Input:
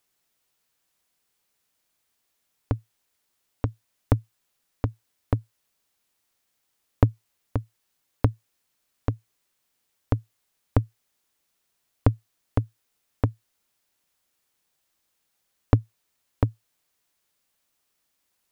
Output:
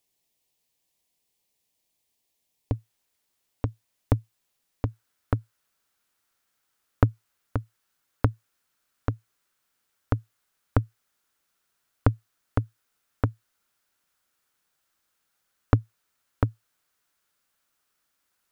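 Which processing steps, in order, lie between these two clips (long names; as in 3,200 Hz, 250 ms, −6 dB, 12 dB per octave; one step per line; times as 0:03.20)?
parametric band 1,400 Hz −15 dB 0.56 octaves, from 0:02.75 −2 dB, from 0:04.85 +8 dB
level −1.5 dB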